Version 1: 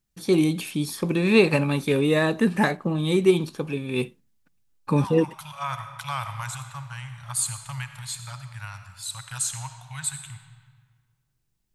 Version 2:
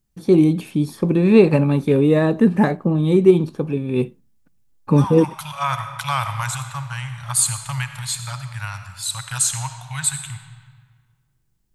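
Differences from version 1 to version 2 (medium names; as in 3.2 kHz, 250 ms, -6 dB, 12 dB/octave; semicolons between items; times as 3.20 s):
first voice: add tilt shelf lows +7.5 dB, about 1.2 kHz; second voice +8.0 dB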